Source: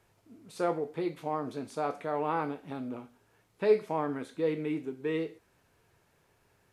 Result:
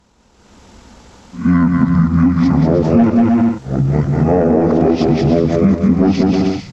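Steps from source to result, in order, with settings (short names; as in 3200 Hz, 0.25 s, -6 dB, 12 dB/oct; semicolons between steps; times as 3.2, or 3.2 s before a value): whole clip reversed; pitch shift -10.5 st; sine folder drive 5 dB, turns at -14 dBFS; bell 200 Hz +3.5 dB 0.29 oct; on a send: bouncing-ball echo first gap 0.19 s, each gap 0.65×, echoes 5; on the sum: compressor 4:1, threshold -25 dBFS, peak gain reduction 10 dB; tone controls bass 0 dB, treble +3 dB; AGC gain up to 12.5 dB; gain +3.5 dB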